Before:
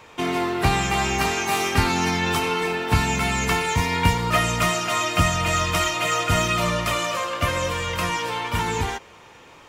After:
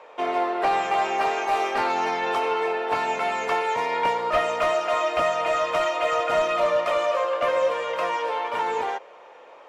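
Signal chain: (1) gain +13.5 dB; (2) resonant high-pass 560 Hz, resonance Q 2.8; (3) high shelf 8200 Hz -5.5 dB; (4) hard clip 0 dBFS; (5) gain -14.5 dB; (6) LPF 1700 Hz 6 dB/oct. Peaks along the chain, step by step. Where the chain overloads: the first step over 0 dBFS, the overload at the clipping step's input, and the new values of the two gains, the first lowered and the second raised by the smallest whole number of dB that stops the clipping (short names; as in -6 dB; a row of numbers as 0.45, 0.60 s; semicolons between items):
+8.0, +8.0, +8.0, 0.0, -14.5, -14.5 dBFS; step 1, 8.0 dB; step 1 +5.5 dB, step 5 -6.5 dB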